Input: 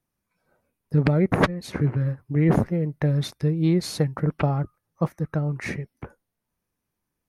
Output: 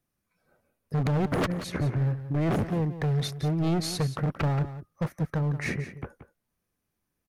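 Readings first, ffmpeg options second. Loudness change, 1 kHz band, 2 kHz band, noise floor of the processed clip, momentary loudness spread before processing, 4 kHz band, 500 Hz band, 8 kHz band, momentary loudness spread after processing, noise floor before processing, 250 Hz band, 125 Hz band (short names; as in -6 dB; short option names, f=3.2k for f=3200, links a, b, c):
-4.5 dB, -3.0 dB, -4.0 dB, -82 dBFS, 9 LU, -0.5 dB, -5.5 dB, 0.0 dB, 8 LU, -82 dBFS, -5.0 dB, -3.5 dB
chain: -filter_complex "[0:a]bandreject=f=930:w=9.9,asoftclip=type=hard:threshold=-23dB,asplit=2[a][b];[b]aecho=0:1:178:0.237[c];[a][c]amix=inputs=2:normalize=0"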